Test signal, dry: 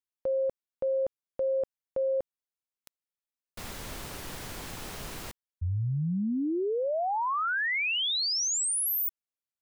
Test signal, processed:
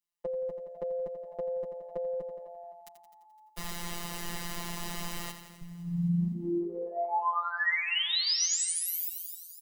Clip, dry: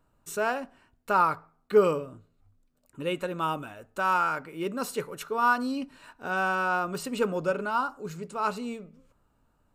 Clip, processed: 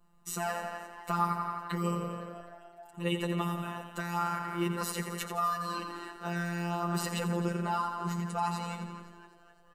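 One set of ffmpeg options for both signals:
-filter_complex "[0:a]asplit=2[a][b];[b]aecho=0:1:86|172|258|344|430|516|602:0.316|0.187|0.11|0.0649|0.0383|0.0226|0.0133[c];[a][c]amix=inputs=2:normalize=0,acontrast=73,adynamicequalizer=threshold=0.00794:dfrequency=1900:dqfactor=4.9:tfrequency=1900:tqfactor=4.9:attack=5:release=100:ratio=0.375:range=2.5:mode=boostabove:tftype=bell,asplit=2[d][e];[e]asplit=5[f][g][h][i][j];[f]adelay=256,afreqshift=70,volume=-19.5dB[k];[g]adelay=512,afreqshift=140,volume=-24.4dB[l];[h]adelay=768,afreqshift=210,volume=-29.3dB[m];[i]adelay=1024,afreqshift=280,volume=-34.1dB[n];[j]adelay=1280,afreqshift=350,volume=-39dB[o];[k][l][m][n][o]amix=inputs=5:normalize=0[p];[d][p]amix=inputs=2:normalize=0,acrossover=split=230|5800[q][r][s];[q]acompressor=threshold=-28dB:ratio=4[t];[r]acompressor=threshold=-23dB:ratio=4[u];[s]acompressor=threshold=-28dB:ratio=4[v];[t][u][v]amix=inputs=3:normalize=0,afftfilt=real='hypot(re,im)*cos(PI*b)':imag='0':win_size=1024:overlap=0.75,aecho=1:1:4.8:0.53,volume=-3dB"

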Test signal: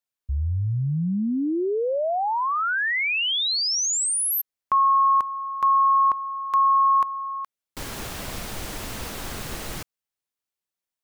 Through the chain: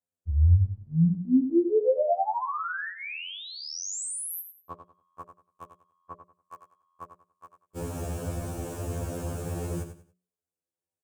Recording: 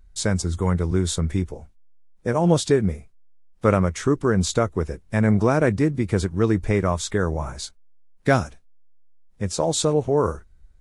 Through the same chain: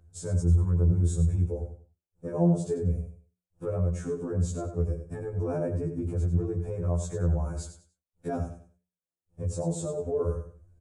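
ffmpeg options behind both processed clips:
-filter_complex "[0:a]equalizer=f=125:t=o:w=1:g=3,equalizer=f=250:t=o:w=1:g=-4,equalizer=f=500:t=o:w=1:g=5,equalizer=f=1k:t=o:w=1:g=-3,equalizer=f=4k:t=o:w=1:g=-9,equalizer=f=8k:t=o:w=1:g=9,acompressor=threshold=-21dB:ratio=6:attack=0.21:release=365:knee=6:detection=rms,highpass=48,tiltshelf=f=880:g=9.5,alimiter=limit=-17.5dB:level=0:latency=1:release=84,asuperstop=centerf=2000:order=4:qfactor=6.8,bandreject=f=60:t=h:w=6,bandreject=f=120:t=h:w=6,bandreject=f=180:t=h:w=6,bandreject=f=240:t=h:w=6,bandreject=f=300:t=h:w=6,bandreject=f=360:t=h:w=6,bandreject=f=420:t=h:w=6,bandreject=f=480:t=h:w=6,bandreject=f=540:t=h:w=6,bandreject=f=600:t=h:w=6,asplit=2[a][b];[b]aecho=0:1:94|188|282:0.335|0.0871|0.0226[c];[a][c]amix=inputs=2:normalize=0,afftfilt=real='re*2*eq(mod(b,4),0)':imag='im*2*eq(mod(b,4),0)':win_size=2048:overlap=0.75"

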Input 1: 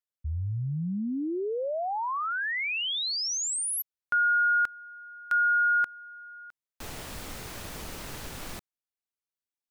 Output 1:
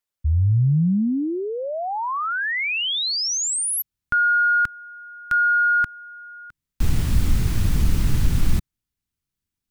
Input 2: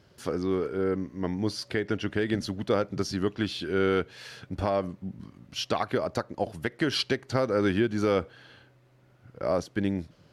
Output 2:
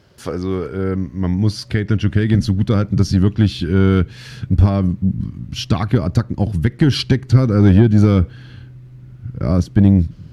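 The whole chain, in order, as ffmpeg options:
-af "asubboost=boost=12:cutoff=170,acontrast=71"

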